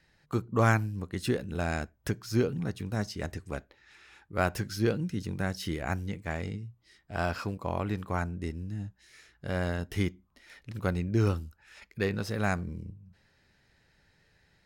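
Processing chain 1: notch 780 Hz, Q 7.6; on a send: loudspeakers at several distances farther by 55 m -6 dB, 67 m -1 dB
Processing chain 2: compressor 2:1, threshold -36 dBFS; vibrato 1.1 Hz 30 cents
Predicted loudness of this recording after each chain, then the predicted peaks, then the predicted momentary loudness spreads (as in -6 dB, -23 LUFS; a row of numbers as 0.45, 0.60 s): -29.5, -38.5 LUFS; -10.0, -21.0 dBFS; 13, 13 LU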